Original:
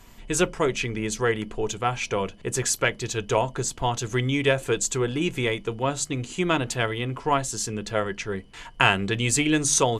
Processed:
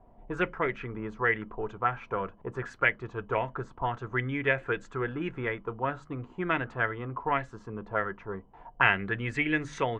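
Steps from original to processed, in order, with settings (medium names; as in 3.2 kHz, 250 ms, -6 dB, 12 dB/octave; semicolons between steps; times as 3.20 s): touch-sensitive low-pass 680–2000 Hz up, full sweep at -18.5 dBFS; trim -8 dB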